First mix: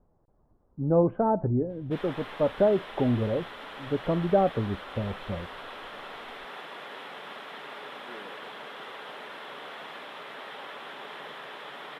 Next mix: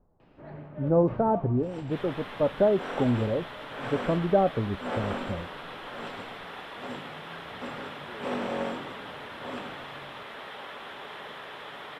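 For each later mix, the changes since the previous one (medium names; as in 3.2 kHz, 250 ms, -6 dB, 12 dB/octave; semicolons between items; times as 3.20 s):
first sound: unmuted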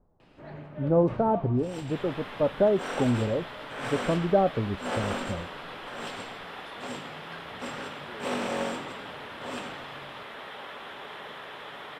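first sound: remove low-pass 1.6 kHz 6 dB/octave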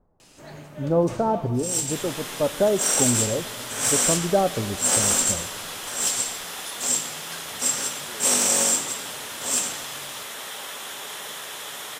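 speech: send on; master: remove distance through air 440 m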